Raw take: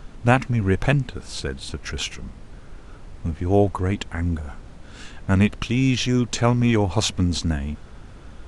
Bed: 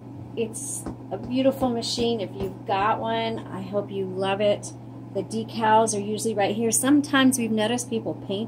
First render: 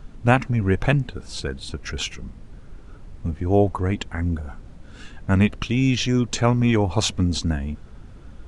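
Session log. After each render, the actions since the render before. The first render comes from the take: denoiser 6 dB, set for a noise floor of -42 dBFS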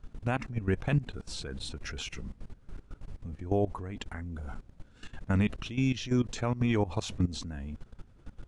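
level quantiser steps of 19 dB; limiter -18 dBFS, peak gain reduction 11 dB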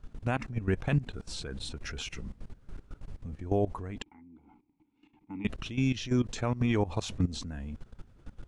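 4.02–5.45 vowel filter u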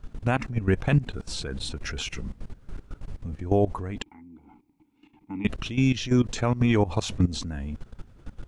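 gain +6 dB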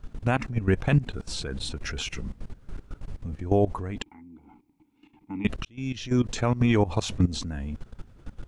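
5.65–6.31 fade in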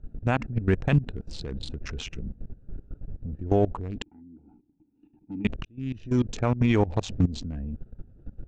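Wiener smoothing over 41 samples; steep low-pass 8000 Hz 36 dB/oct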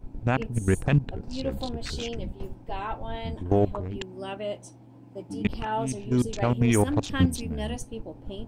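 add bed -11 dB

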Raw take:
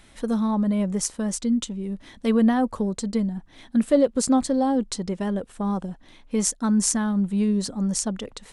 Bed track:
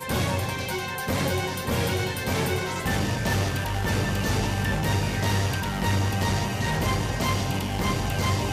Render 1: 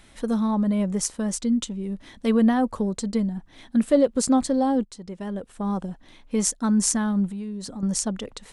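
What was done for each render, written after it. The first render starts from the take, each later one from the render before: 4.85–5.81 fade in linear, from -15.5 dB; 7.29–7.83 compressor 5:1, threshold -31 dBFS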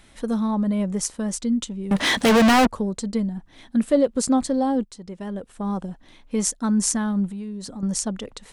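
1.91–2.67 overdrive pedal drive 39 dB, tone 7300 Hz, clips at -9.5 dBFS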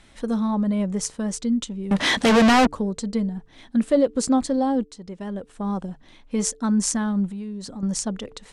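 LPF 8800 Hz 12 dB/oct; de-hum 147.1 Hz, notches 3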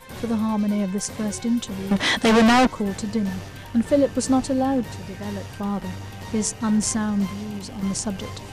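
add bed track -11.5 dB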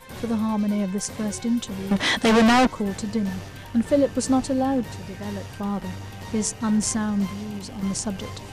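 gain -1 dB

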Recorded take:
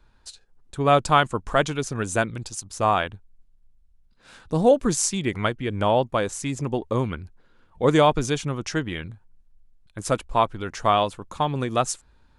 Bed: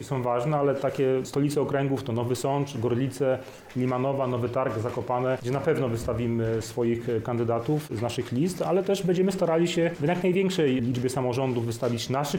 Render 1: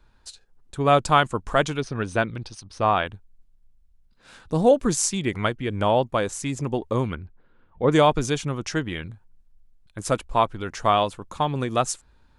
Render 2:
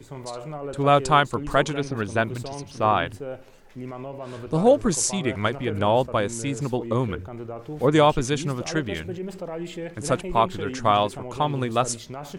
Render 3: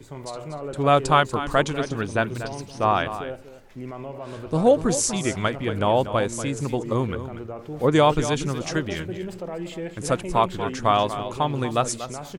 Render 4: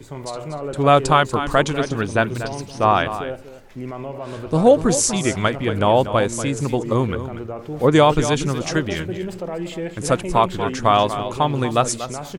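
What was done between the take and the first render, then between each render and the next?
1.8–3.06 polynomial smoothing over 15 samples; 7.15–7.92 air absorption 330 m
add bed -9.5 dB
echo 0.239 s -12 dB
gain +4.5 dB; limiter -3 dBFS, peak gain reduction 3 dB

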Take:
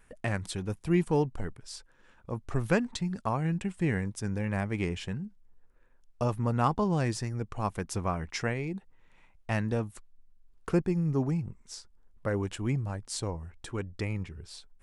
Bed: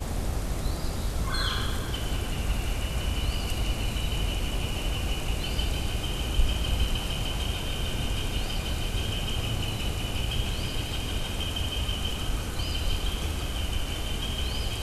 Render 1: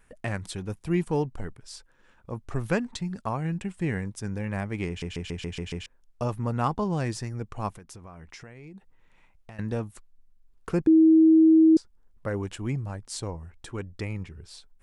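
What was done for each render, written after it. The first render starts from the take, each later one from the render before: 4.88 stutter in place 0.14 s, 7 plays; 7.7–9.59 compressor, threshold -42 dBFS; 10.87–11.77 bleep 320 Hz -13 dBFS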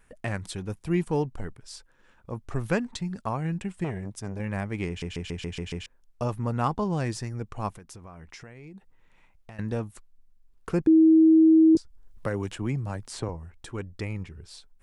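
3.84–4.4 core saturation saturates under 520 Hz; 11.75–13.29 three-band squash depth 70%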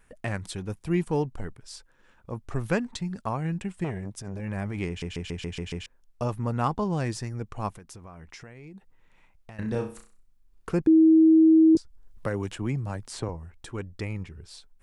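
4.19–4.8 transient shaper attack -10 dB, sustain +6 dB; 9.56–10.7 flutter echo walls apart 5.5 m, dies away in 0.38 s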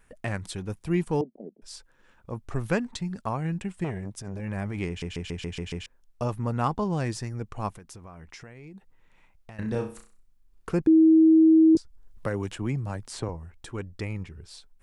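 1.21–1.62 elliptic band-pass 200–640 Hz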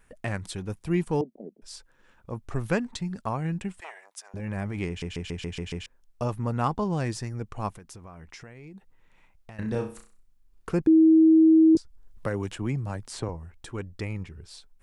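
3.8–4.34 HPF 740 Hz 24 dB/oct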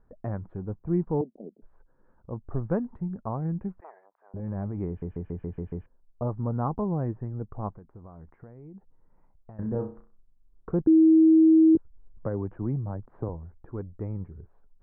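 Bessel low-pass 800 Hz, order 6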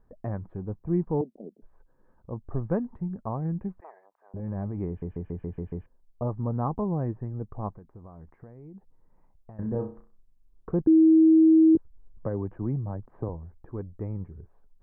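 notch 1400 Hz, Q 11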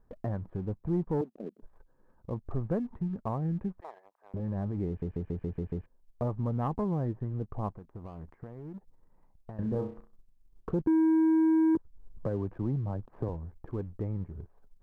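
sample leveller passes 1; compressor 1.5:1, threshold -37 dBFS, peak gain reduction 7.5 dB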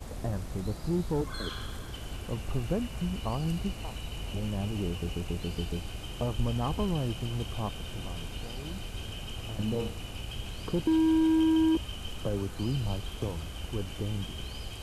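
add bed -9.5 dB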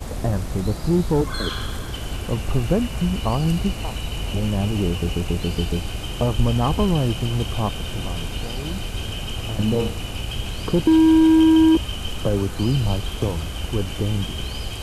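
gain +10.5 dB

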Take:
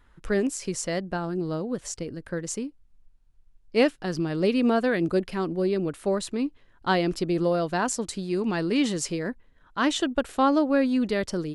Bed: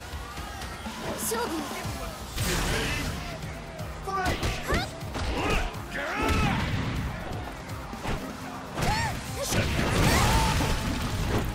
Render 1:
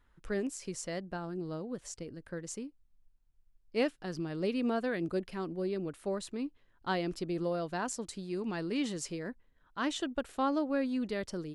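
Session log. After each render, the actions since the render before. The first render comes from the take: gain -9.5 dB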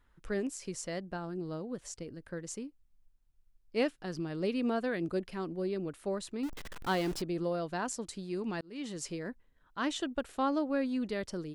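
6.43–7.22 zero-crossing step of -37.5 dBFS; 8.61–9.07 fade in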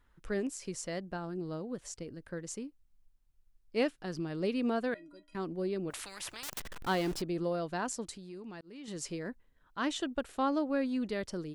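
4.94–5.35 metallic resonator 290 Hz, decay 0.26 s, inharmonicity 0.03; 5.9–6.6 spectral compressor 10:1; 8.15–8.88 compressor 2.5:1, threshold -47 dBFS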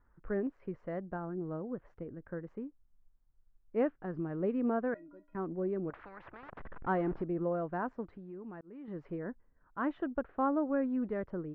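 LPF 1600 Hz 24 dB/oct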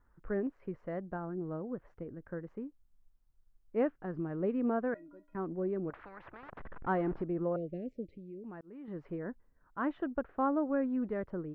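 7.56–8.44 Chebyshev band-stop 580–2200 Hz, order 4

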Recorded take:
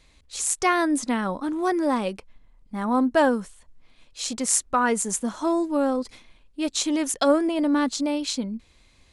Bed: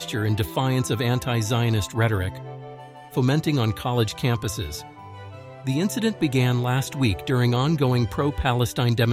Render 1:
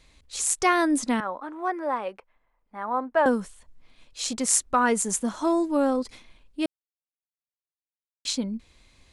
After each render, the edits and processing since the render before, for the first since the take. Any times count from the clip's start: 1.2–3.26 three-band isolator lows -19 dB, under 470 Hz, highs -19 dB, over 2300 Hz; 6.66–8.25 mute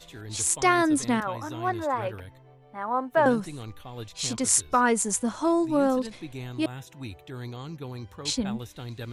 add bed -17 dB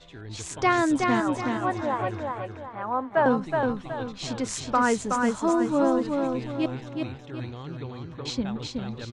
air absorption 130 m; feedback echo 0.371 s, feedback 39%, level -4 dB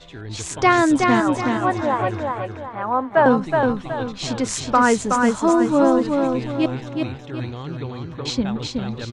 gain +6.5 dB

